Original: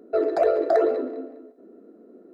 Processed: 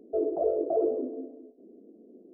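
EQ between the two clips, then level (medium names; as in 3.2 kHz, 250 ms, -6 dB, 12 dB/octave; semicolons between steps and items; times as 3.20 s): Gaussian low-pass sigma 14 samples; -1.5 dB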